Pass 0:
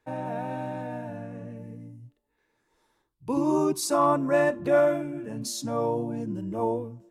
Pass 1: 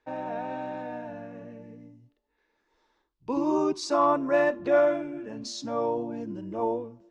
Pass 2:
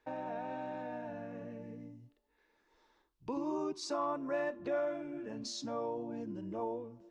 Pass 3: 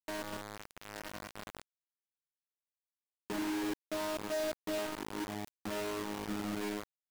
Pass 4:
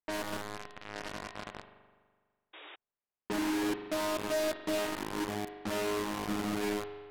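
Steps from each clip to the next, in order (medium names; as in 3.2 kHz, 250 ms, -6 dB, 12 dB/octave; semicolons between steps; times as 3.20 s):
low-pass 5.8 kHz 24 dB/octave; peaking EQ 130 Hz -12 dB 1 oct
compression 2:1, threshold -43 dBFS, peak gain reduction 13.5 dB
vocoder on a held chord bare fifth, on G#3; companded quantiser 2-bit; trim -7.5 dB
spring tank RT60 1.6 s, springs 41 ms, chirp 45 ms, DRR 8 dB; level-controlled noise filter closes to 2 kHz, open at -36 dBFS; painted sound noise, 2.53–2.76 s, 290–3800 Hz -54 dBFS; trim +4 dB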